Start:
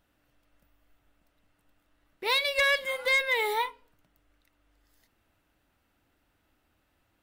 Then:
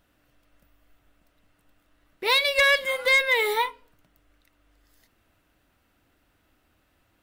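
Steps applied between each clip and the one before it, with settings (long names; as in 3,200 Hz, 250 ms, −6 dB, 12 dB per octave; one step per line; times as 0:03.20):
notch filter 860 Hz, Q 15
level +5 dB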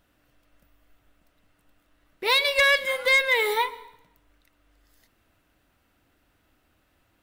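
dense smooth reverb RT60 0.83 s, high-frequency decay 0.9×, pre-delay 105 ms, DRR 19 dB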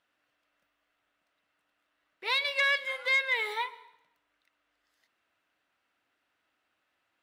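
resonant band-pass 2,000 Hz, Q 0.52
level −6 dB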